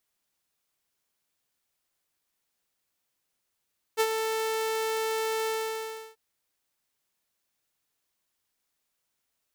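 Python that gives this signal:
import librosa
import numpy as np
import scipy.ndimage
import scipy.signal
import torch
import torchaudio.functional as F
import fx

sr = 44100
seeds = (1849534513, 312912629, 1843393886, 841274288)

y = fx.adsr_tone(sr, wave='saw', hz=443.0, attack_ms=34.0, decay_ms=57.0, sustain_db=-7.0, held_s=1.51, release_ms=677.0, level_db=-17.5)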